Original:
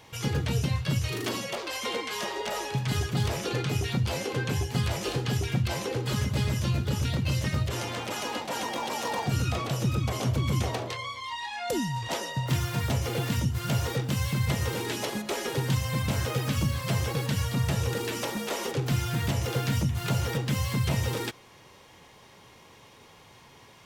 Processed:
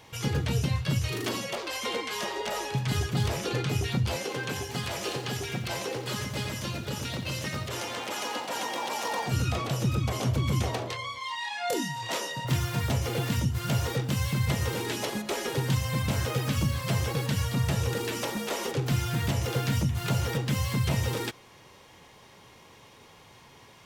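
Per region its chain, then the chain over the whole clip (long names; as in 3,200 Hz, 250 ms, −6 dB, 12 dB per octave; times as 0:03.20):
0:04.16–0:09.30: high-pass filter 320 Hz 6 dB per octave + feedback echo at a low word length 88 ms, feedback 35%, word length 9 bits, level −10 dB
0:11.18–0:12.45: high-pass filter 110 Hz 6 dB per octave + low-shelf EQ 220 Hz −9 dB + double-tracking delay 27 ms −3 dB
whole clip: no processing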